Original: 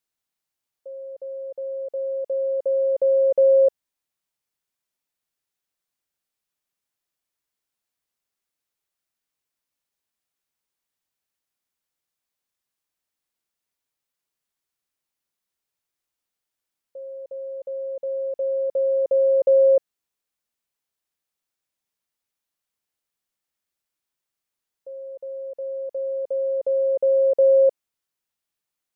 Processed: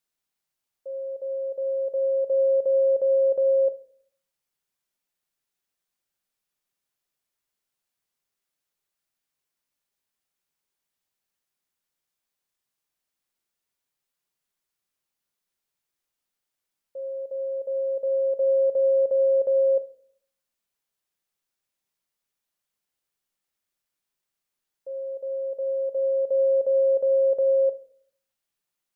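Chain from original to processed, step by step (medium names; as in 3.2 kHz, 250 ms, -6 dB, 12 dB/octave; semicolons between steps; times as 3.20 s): peak limiter -20 dBFS, peak gain reduction 8.5 dB; on a send: reverberation RT60 0.55 s, pre-delay 5 ms, DRR 10 dB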